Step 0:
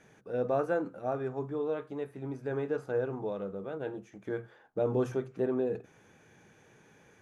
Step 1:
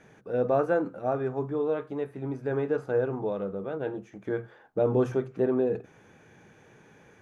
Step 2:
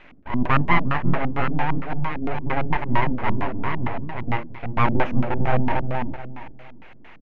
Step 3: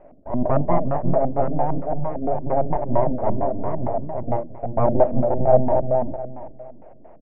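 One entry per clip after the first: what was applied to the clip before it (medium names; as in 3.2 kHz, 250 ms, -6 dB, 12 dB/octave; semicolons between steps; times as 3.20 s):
treble shelf 4 kHz -7 dB; trim +5 dB
full-wave rectifier; feedback delay 354 ms, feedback 29%, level -4.5 dB; LFO low-pass square 4.4 Hz 250–2400 Hz; trim +7.5 dB
resonant low-pass 630 Hz, resonance Q 6.2; trim -1.5 dB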